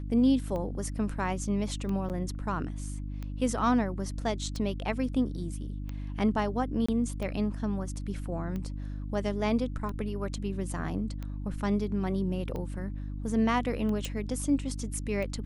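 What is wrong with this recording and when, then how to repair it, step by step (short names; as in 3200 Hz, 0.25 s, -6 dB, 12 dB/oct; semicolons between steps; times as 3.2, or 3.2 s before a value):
hum 50 Hz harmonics 6 -36 dBFS
tick 45 rpm -25 dBFS
2.09–2.1 gap 8.4 ms
6.86–6.88 gap 25 ms
14.05 pop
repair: de-click; de-hum 50 Hz, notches 6; interpolate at 2.09, 8.4 ms; interpolate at 6.86, 25 ms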